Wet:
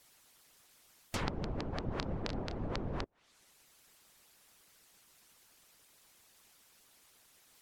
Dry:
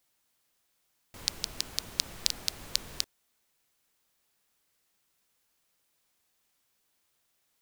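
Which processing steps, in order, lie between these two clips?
1.88–2.75 s: doubling 29 ms -9 dB; low-pass that closes with the level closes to 640 Hz, closed at -39.5 dBFS; harmonic-percussive split harmonic -18 dB; trim +16.5 dB

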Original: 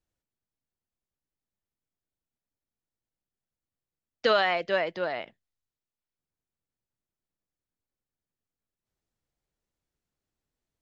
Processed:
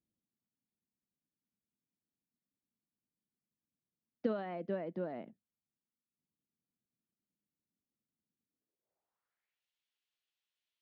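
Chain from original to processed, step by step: compression 2:1, threshold -29 dBFS, peak gain reduction 6.5 dB; band-pass sweep 220 Hz -> 3.1 kHz, 8.45–9.65 s; trim +6.5 dB

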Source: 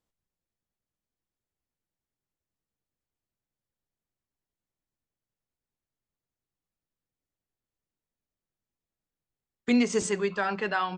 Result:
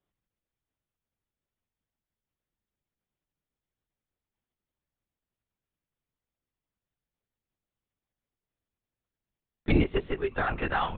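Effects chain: LPC vocoder at 8 kHz whisper; 9.81–10.35 s: upward expansion 1.5:1, over -37 dBFS

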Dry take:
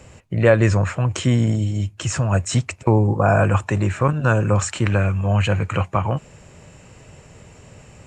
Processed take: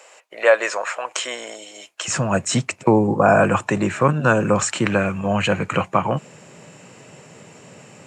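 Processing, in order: high-pass 550 Hz 24 dB/octave, from 2.08 s 150 Hz; trim +3.5 dB

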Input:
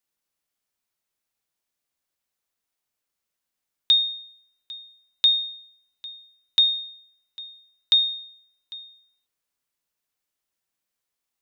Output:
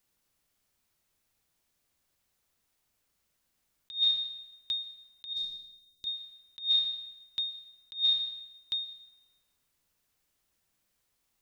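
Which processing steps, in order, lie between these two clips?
bass shelf 180 Hz +10.5 dB; algorithmic reverb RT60 0.96 s, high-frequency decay 0.95×, pre-delay 90 ms, DRR 15.5 dB; compressor with a negative ratio -27 dBFS, ratio -0.5; 5.33–6.07 s: high-order bell 1.5 kHz -14 dB 2.8 oct

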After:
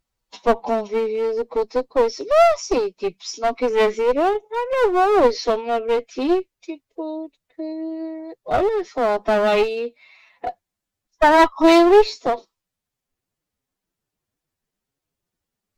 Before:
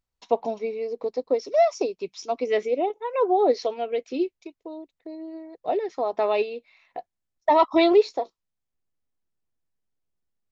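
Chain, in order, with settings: time stretch by phase-locked vocoder 1.5×; one-sided clip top -29 dBFS; trim +8.5 dB

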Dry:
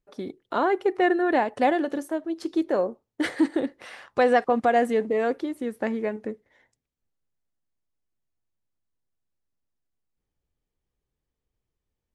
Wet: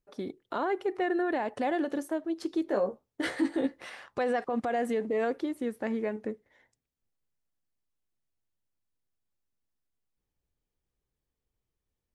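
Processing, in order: peak limiter -19 dBFS, peak gain reduction 9 dB; 2.67–3.90 s: doubling 15 ms -3 dB; trim -2.5 dB

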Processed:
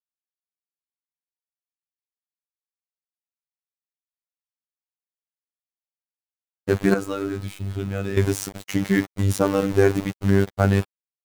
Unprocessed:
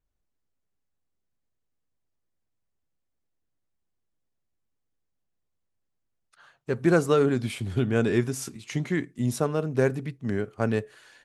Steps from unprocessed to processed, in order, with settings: bass shelf 100 Hz +8 dB; in parallel at +2.5 dB: level held to a coarse grid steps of 15 dB; on the sum: small samples zeroed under -30.5 dBFS; robot voice 98.2 Hz; 6.94–8.17 s: feedback comb 320 Hz, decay 0.92 s, mix 70%; trim +4.5 dB

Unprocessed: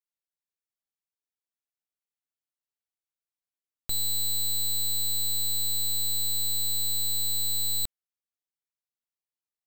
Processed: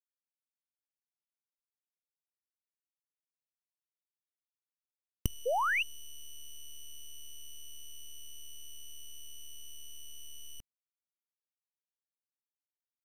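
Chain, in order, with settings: bass shelf 210 Hz +11 dB; hum notches 50/100/150/200/250/300 Hz; power-law waveshaper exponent 3; inverted gate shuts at -32 dBFS, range -40 dB; painted sound rise, 4.04–4.32 s, 610–4100 Hz -46 dBFS; speed mistake 45 rpm record played at 33 rpm; trim +16.5 dB

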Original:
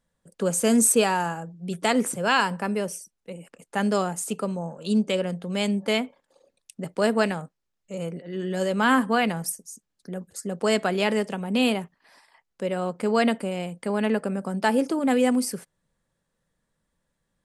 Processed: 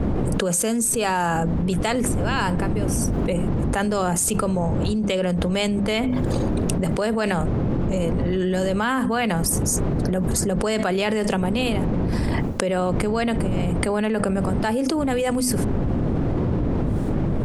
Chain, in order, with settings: wind noise 220 Hz -29 dBFS; hum notches 50/100/150/200/250 Hz; level flattener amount 100%; trim -7 dB

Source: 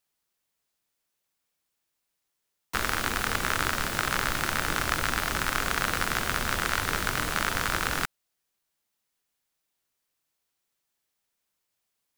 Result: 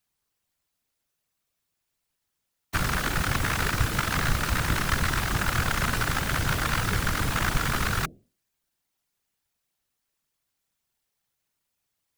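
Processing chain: bass shelf 120 Hz +11 dB; hum notches 60/120/180/240/300/360/420/480/540/600 Hz; whisper effect

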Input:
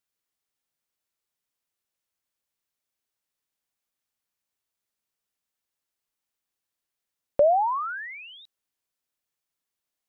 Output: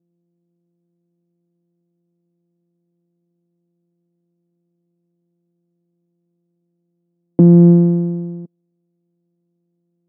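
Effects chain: sorted samples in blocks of 256 samples; Butterworth band-pass 250 Hz, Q 1.2; distance through air 210 m; loudness maximiser +22 dB; tape noise reduction on one side only decoder only; trim -1 dB

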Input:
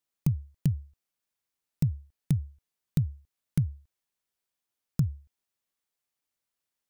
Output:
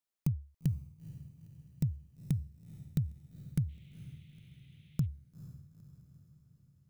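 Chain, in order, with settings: echo that smears into a reverb 465 ms, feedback 55%, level -15 dB; 3.68–5.05 s: band noise 2–3.7 kHz -66 dBFS; trim -5.5 dB

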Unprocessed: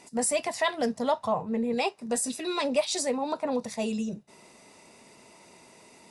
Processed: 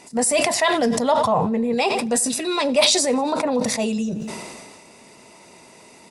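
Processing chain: feedback delay 91 ms, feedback 56%, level -23.5 dB; decay stretcher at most 31 dB/s; trim +6.5 dB

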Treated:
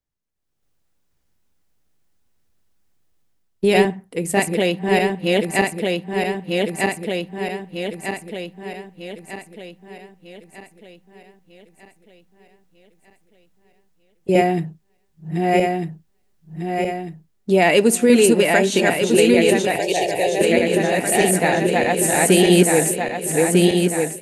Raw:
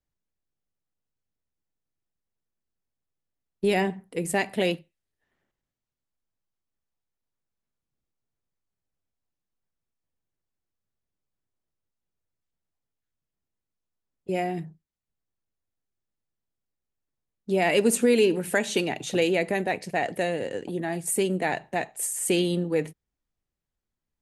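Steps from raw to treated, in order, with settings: backward echo that repeats 624 ms, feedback 66%, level -0.5 dB; level rider gain up to 14 dB; 19.76–20.41 s: static phaser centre 550 Hz, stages 4; trim -1 dB

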